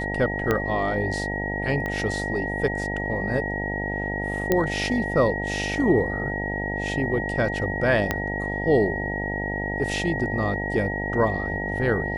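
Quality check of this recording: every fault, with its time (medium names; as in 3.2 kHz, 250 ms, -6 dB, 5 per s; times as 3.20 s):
buzz 50 Hz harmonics 18 -30 dBFS
whine 1.9 kHz -29 dBFS
0.51 s: pop -9 dBFS
1.86 s: pop -17 dBFS
4.52 s: pop -7 dBFS
8.11 s: pop -8 dBFS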